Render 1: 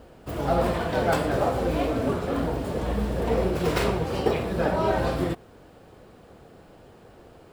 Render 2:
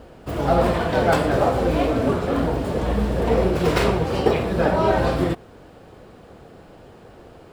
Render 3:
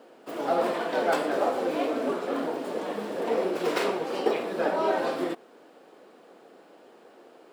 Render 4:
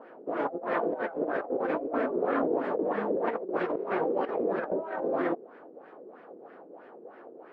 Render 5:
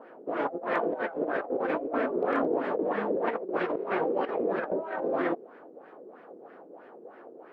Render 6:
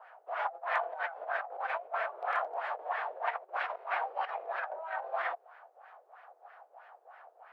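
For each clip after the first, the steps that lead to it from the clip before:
treble shelf 9.2 kHz -6 dB; trim +5 dB
high-pass 260 Hz 24 dB/octave; trim -6 dB
LFO low-pass sine 3.1 Hz 390–1900 Hz; compressor with a negative ratio -27 dBFS, ratio -0.5; trim -2 dB
dynamic bell 2.9 kHz, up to +4 dB, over -51 dBFS, Q 0.74; hard clipper -16.5 dBFS, distortion -47 dB
elliptic high-pass 710 Hz, stop band 80 dB

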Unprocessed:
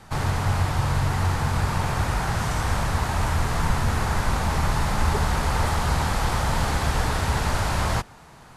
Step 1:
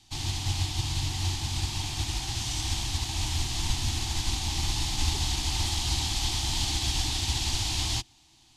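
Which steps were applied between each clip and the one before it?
FFT filter 120 Hz 0 dB, 170 Hz -11 dB, 330 Hz +5 dB, 500 Hz -25 dB, 770 Hz -3 dB, 1.4 kHz -15 dB, 3.2 kHz +13 dB, 6.6 kHz +12 dB, 11 kHz +3 dB; upward expansion 1.5:1, over -35 dBFS; trim -4.5 dB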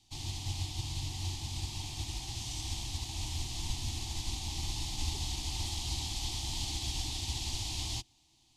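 peaking EQ 1.5 kHz -11.5 dB 0.62 oct; trim -7.5 dB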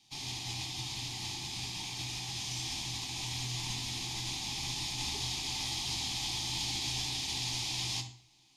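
reverberation RT60 0.50 s, pre-delay 3 ms, DRR 3.5 dB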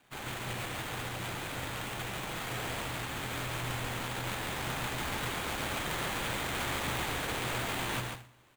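sample-rate reducer 5.4 kHz, jitter 20%; delay 141 ms -4.5 dB

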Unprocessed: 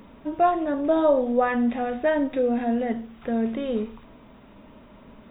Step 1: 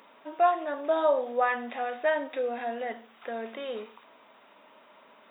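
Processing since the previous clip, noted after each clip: high-pass 680 Hz 12 dB/octave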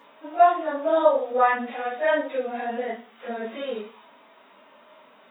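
phase randomisation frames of 100 ms; harmonic-percussive split harmonic +5 dB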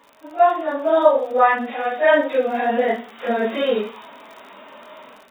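level rider gain up to 12 dB; crackle 50 per s -35 dBFS; trim -1 dB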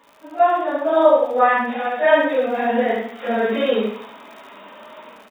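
delay 71 ms -3.5 dB; on a send at -8 dB: reverberation RT60 0.50 s, pre-delay 51 ms; on the sum: trim -1 dB

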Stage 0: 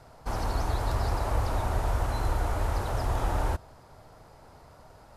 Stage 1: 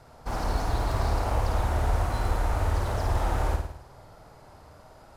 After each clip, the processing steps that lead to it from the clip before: self-modulated delay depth 0.13 ms; on a send: flutter echo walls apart 9.2 m, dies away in 0.66 s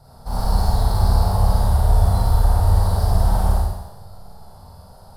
FFT filter 120 Hz 0 dB, 180 Hz +3 dB, 280 Hz -14 dB, 460 Hz -8 dB, 840 Hz -3 dB, 2.4 kHz -20 dB, 4.6 kHz +1 dB, 6.6 kHz -12 dB, 9.5 kHz +2 dB; Schroeder reverb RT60 0.9 s, combs from 29 ms, DRR -4.5 dB; trim +4.5 dB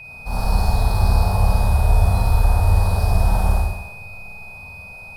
whistle 2.5 kHz -36 dBFS

